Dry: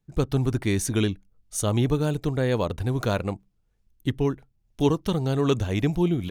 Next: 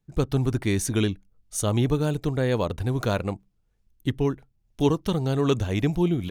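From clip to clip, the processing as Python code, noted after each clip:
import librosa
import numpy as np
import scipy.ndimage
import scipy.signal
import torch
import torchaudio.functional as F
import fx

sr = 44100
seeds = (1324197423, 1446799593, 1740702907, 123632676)

y = x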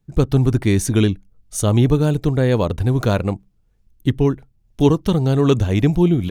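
y = fx.low_shelf(x, sr, hz=430.0, db=5.0)
y = y * 10.0 ** (4.0 / 20.0)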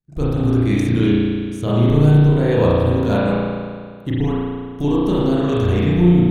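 y = fx.level_steps(x, sr, step_db=21)
y = fx.rev_spring(y, sr, rt60_s=1.9, pass_ms=(34,), chirp_ms=25, drr_db=-8.0)
y = y * 10.0 ** (-1.0 / 20.0)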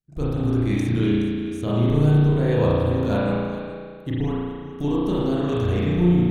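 y = x + 10.0 ** (-13.5 / 20.0) * np.pad(x, (int(421 * sr / 1000.0), 0))[:len(x)]
y = y * 10.0 ** (-5.0 / 20.0)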